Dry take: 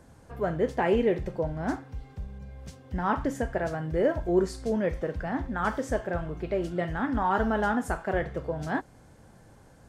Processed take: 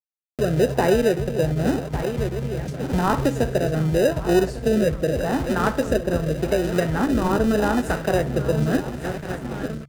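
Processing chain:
feedback delay that plays each chunk backwards 575 ms, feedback 75%, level −13 dB
automatic gain control gain up to 6.5 dB
dynamic equaliser 560 Hz, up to +6 dB, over −33 dBFS, Q 0.85
echo ahead of the sound 45 ms −22.5 dB
noise gate with hold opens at −28 dBFS
dead-zone distortion −43 dBFS
parametric band 140 Hz +13.5 dB 0.22 octaves
in parallel at −5.5 dB: decimation without filtering 40×
on the sum: rotating-speaker cabinet horn 0.85 Hz
multiband upward and downward compressor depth 70%
level −3.5 dB

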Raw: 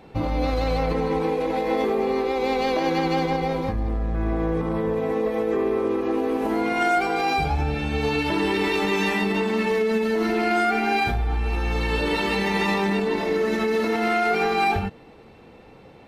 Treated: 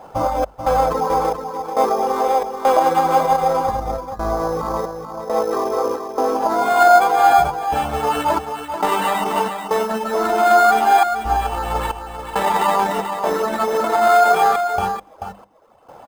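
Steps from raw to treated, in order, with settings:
gate pattern "xx.xxx..xxx.xxxx" 68 BPM −24 dB
reverb reduction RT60 0.9 s
sample-rate reduction 5,700 Hz, jitter 0%
flat-topped bell 880 Hz +14.5 dB
mains-hum notches 50/100/150/200 Hz
single-tap delay 436 ms −8 dB
level −1 dB

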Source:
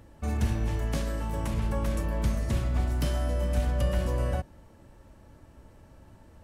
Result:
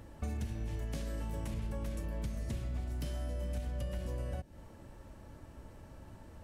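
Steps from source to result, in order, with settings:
dynamic equaliser 1,100 Hz, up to −6 dB, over −51 dBFS, Q 1.2
downward compressor 12 to 1, threshold −35 dBFS, peak gain reduction 14.5 dB
level +1 dB

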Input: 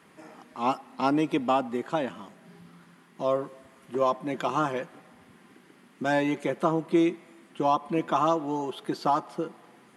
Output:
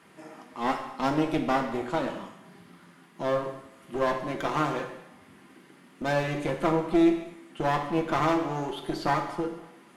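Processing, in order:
asymmetric clip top −33.5 dBFS
reverb whose tail is shaped and stops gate 290 ms falling, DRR 3 dB

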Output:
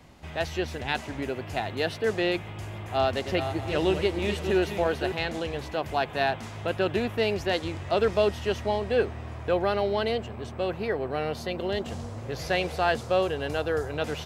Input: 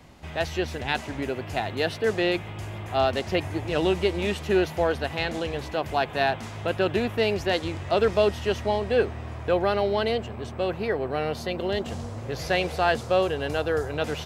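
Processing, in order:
0:02.60–0:05.12: feedback delay that plays each chunk backwards 318 ms, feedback 40%, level −8 dB
level −2 dB

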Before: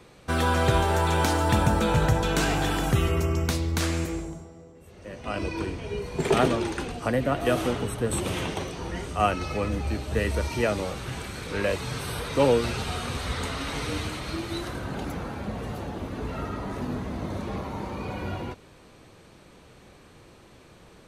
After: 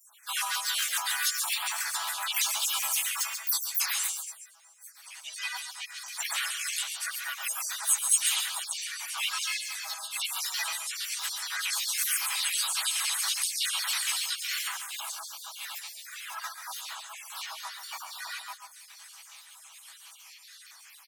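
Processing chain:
time-frequency cells dropped at random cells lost 73%
elliptic high-pass filter 860 Hz, stop band 40 dB
comb filter 6.1 ms, depth 59%
in parallel at +1 dB: speech leveller within 4 dB 2 s
on the sum: brickwall limiter −21.5 dBFS, peak gain reduction 11 dB
first difference
on a send: multi-tap delay 121/138 ms −14.5/−8.5 dB
on the sum: pitch-shifted copies added −4 semitones −8 dB, +4 semitones −5 dB
level +8 dB

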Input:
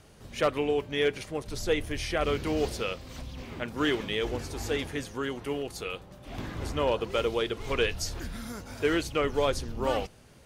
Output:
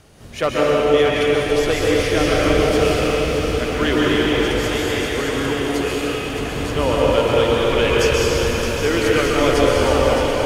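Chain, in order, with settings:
0:04.41–0:05.03: high-pass filter 590 Hz
delay that swaps between a low-pass and a high-pass 309 ms, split 950 Hz, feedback 84%, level −6 dB
dense smooth reverb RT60 3 s, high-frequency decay 0.9×, pre-delay 115 ms, DRR −5 dB
level +5.5 dB

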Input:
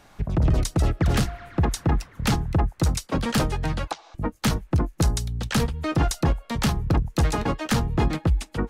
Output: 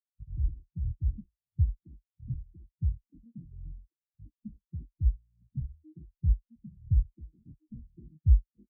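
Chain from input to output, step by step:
rippled gain that drifts along the octave scale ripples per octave 1.8, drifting +1.5 Hz, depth 14 dB
inverse Chebyshev low-pass filter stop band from 980 Hz, stop band 50 dB
every bin expanded away from the loudest bin 2.5 to 1
level −3.5 dB

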